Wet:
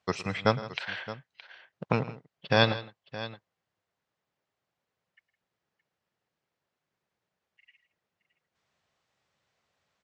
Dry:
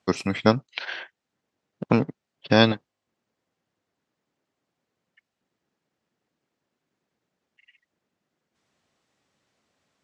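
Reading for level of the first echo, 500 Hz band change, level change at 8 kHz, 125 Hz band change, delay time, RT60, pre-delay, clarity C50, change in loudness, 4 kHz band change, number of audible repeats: −17.5 dB, −5.0 dB, can't be measured, −4.0 dB, 110 ms, no reverb audible, no reverb audible, no reverb audible, −6.0 dB, −3.5 dB, 3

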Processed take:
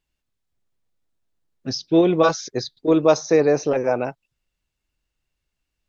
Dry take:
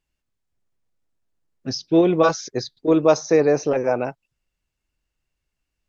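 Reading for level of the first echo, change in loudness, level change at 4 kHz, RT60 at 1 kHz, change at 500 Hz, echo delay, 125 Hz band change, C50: no echo audible, 0.0 dB, +1.5 dB, no reverb audible, 0.0 dB, no echo audible, 0.0 dB, no reverb audible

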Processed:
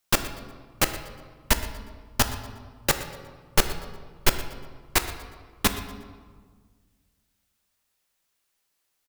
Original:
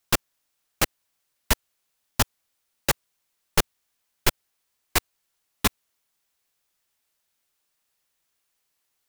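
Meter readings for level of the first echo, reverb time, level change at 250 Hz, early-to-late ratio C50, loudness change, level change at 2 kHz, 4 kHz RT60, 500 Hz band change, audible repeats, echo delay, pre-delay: −17.0 dB, 1.6 s, +1.5 dB, 9.5 dB, −0.5 dB, +0.5 dB, 1.0 s, +1.0 dB, 1, 120 ms, 3 ms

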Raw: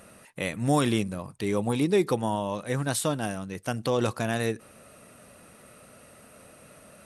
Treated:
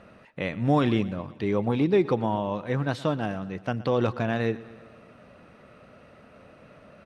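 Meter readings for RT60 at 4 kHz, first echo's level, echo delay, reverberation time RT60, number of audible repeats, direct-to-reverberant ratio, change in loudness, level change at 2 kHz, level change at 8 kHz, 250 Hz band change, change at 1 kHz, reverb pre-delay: no reverb audible, −19.0 dB, 120 ms, no reverb audible, 4, no reverb audible, +1.0 dB, 0.0 dB, below −15 dB, +2.0 dB, +1.0 dB, no reverb audible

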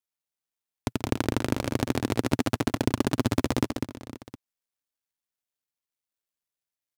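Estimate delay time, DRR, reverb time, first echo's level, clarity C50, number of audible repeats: 135 ms, no reverb audible, no reverb audible, −15.0 dB, no reverb audible, 4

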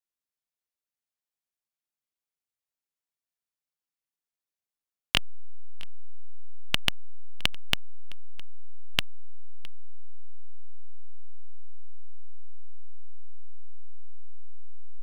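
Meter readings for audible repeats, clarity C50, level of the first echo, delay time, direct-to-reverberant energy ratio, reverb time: 1, no reverb audible, −22.5 dB, 662 ms, no reverb audible, no reverb audible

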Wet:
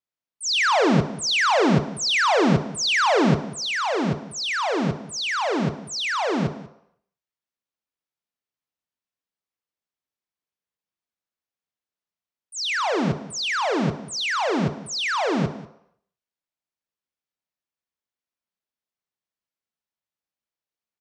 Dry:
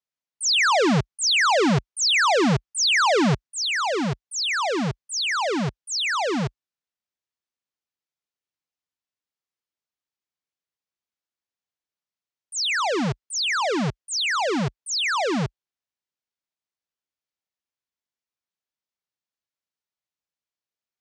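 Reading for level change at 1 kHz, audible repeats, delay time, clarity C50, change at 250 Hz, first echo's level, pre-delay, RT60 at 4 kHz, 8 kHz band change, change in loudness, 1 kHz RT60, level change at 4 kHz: +0.5 dB, 1, 191 ms, 11.0 dB, +1.5 dB, −18.5 dB, 26 ms, 0.60 s, −4.0 dB, −0.5 dB, 0.75 s, −2.0 dB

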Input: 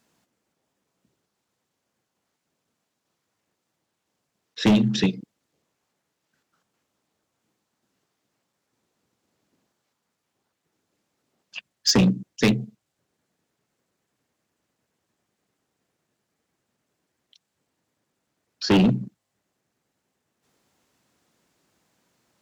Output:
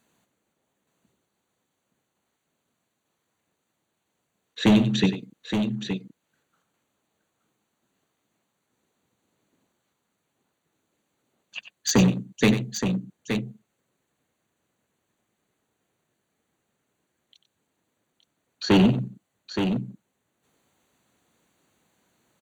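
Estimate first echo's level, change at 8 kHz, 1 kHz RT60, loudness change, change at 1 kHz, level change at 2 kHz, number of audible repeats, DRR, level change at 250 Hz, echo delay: −11.0 dB, 0.0 dB, no reverb audible, −2.5 dB, +1.0 dB, +1.0 dB, 2, no reverb audible, +0.5 dB, 94 ms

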